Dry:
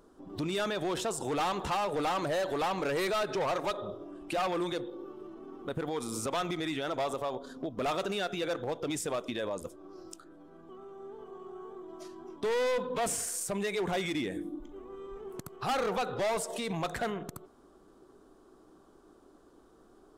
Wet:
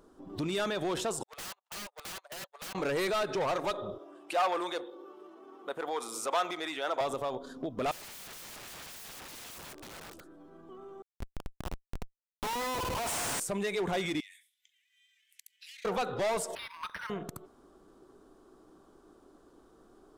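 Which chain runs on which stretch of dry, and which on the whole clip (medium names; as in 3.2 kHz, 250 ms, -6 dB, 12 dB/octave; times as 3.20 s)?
1.23–2.75 s: gate -30 dBFS, range -58 dB + inverse Chebyshev high-pass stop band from 240 Hz, stop band 50 dB + integer overflow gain 37 dB
3.98–7.01 s: high-pass 480 Hz + dynamic bell 890 Hz, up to +5 dB, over -44 dBFS, Q 0.78
7.91–10.28 s: delay 540 ms -13.5 dB + integer overflow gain 42 dB
11.02–13.40 s: resonant high-pass 850 Hz + Schmitt trigger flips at -37 dBFS
14.20–15.85 s: steep high-pass 1.9 kHz 72 dB/octave + compression, threshold -47 dBFS
16.55–17.10 s: brick-wall FIR high-pass 880 Hz + decimation joined by straight lines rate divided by 6×
whole clip: none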